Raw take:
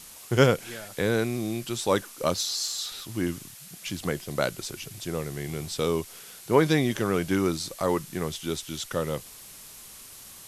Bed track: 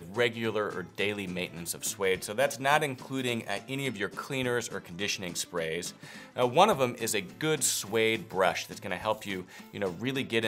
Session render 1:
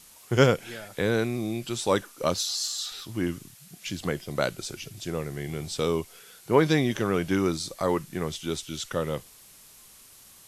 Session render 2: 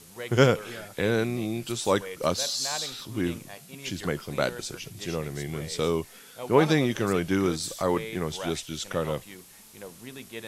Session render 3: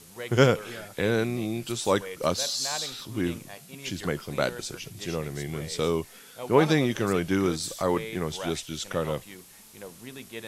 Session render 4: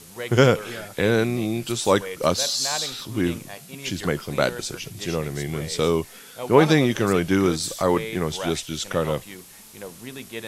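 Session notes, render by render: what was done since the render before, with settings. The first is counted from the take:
noise reduction from a noise print 6 dB
mix in bed track −11 dB
no processing that can be heard
level +5 dB; brickwall limiter −3 dBFS, peak gain reduction 3 dB

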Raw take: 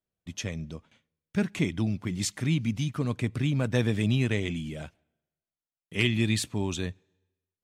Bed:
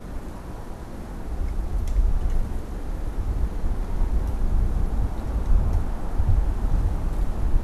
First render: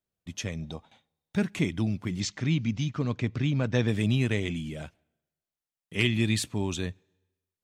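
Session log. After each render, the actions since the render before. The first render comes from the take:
0:00.62–0:01.37: hollow resonant body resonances 790/3,700 Hz, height 16 dB, ringing for 20 ms
0:02.20–0:03.88: Butterworth low-pass 6,700 Hz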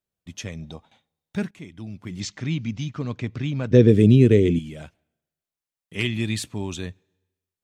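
0:01.51–0:02.23: fade in quadratic, from −14 dB
0:03.71–0:04.59: low shelf with overshoot 590 Hz +10 dB, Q 3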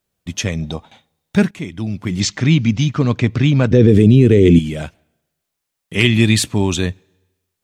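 boost into a limiter +13 dB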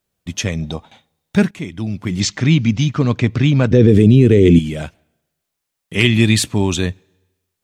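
no processing that can be heard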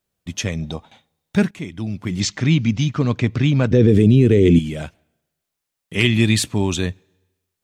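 level −3 dB

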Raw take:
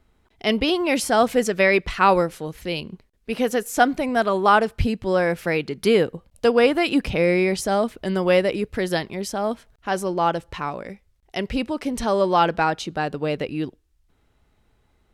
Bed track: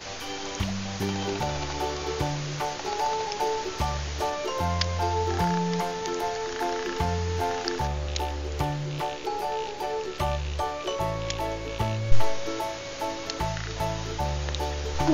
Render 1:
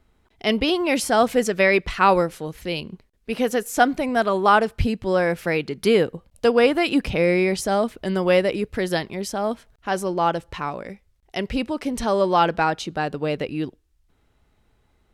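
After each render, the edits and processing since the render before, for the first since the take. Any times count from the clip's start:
no processing that can be heard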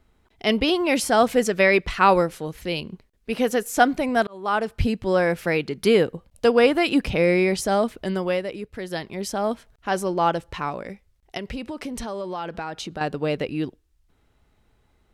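0:04.27–0:04.87: fade in
0:07.99–0:09.29: duck −8.5 dB, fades 0.41 s
0:11.37–0:13.01: downward compressor 5 to 1, threshold −28 dBFS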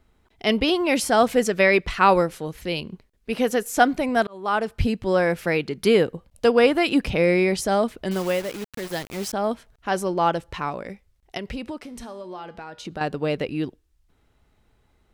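0:08.11–0:09.33: bit-depth reduction 6 bits, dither none
0:11.78–0:12.85: tuned comb filter 120 Hz, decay 0.55 s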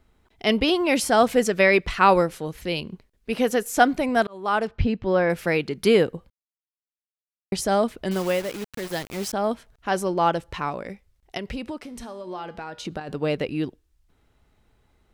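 0:04.67–0:05.30: high-frequency loss of the air 180 metres
0:06.30–0:07.52: silence
0:12.27–0:13.15: compressor whose output falls as the input rises −31 dBFS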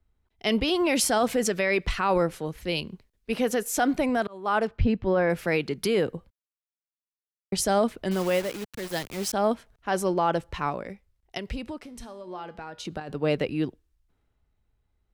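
brickwall limiter −15 dBFS, peak gain reduction 10 dB
multiband upward and downward expander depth 40%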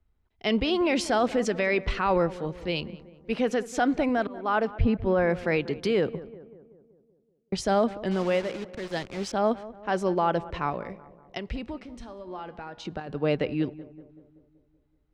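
high-frequency loss of the air 110 metres
feedback echo with a low-pass in the loop 190 ms, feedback 57%, low-pass 1,500 Hz, level −16.5 dB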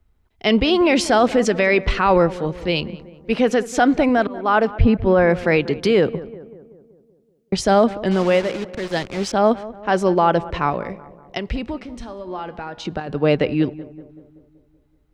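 level +8.5 dB

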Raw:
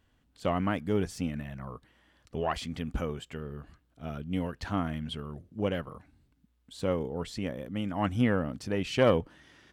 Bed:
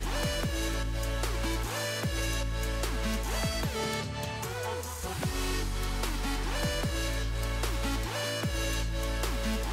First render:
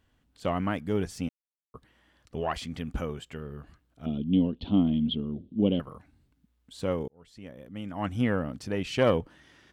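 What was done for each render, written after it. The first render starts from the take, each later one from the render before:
0:01.29–0:01.74: silence
0:04.06–0:05.80: drawn EQ curve 130 Hz 0 dB, 230 Hz +13 dB, 500 Hz +1 dB, 1,100 Hz −10 dB, 1,700 Hz −22 dB, 3,400 Hz +9 dB, 7,000 Hz −29 dB
0:07.08–0:08.34: fade in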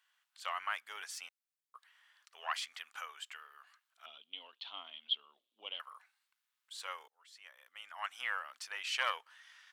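high-pass filter 1,100 Hz 24 dB per octave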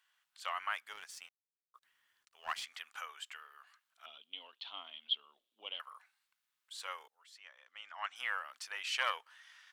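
0:00.93–0:02.64: mu-law and A-law mismatch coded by A
0:07.37–0:08.16: low-pass filter 6,700 Hz 24 dB per octave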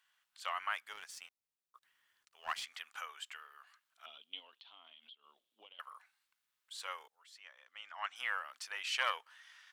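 0:04.39–0:05.79: downward compressor, threshold −55 dBFS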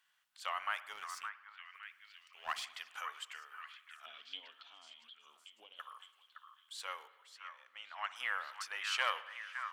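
echo through a band-pass that steps 563 ms, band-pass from 1,400 Hz, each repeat 0.7 octaves, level −6 dB
spring reverb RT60 1.1 s, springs 53 ms, chirp 70 ms, DRR 14.5 dB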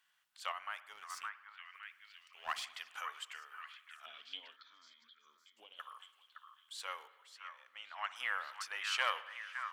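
0:00.52–0:01.10: clip gain −6 dB
0:04.56–0:05.57: phaser with its sweep stopped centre 2,800 Hz, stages 6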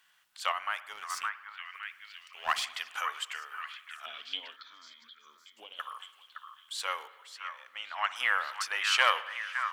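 level +9.5 dB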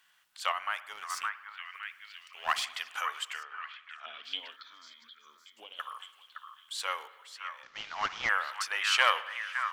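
0:03.43–0:04.24: high-frequency loss of the air 150 metres
0:07.63–0:08.29: variable-slope delta modulation 32 kbit/s

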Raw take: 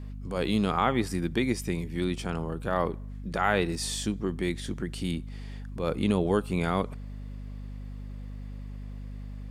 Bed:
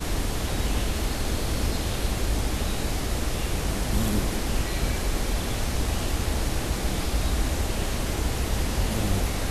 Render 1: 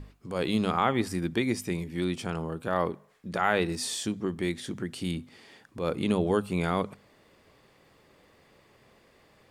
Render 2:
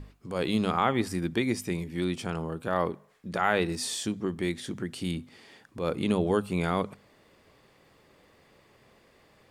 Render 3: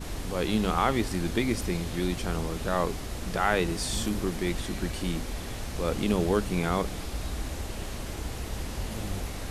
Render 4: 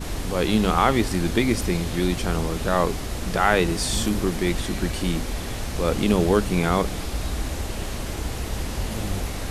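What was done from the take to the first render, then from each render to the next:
mains-hum notches 50/100/150/200/250 Hz
no processing that can be heard
mix in bed −8.5 dB
level +6 dB

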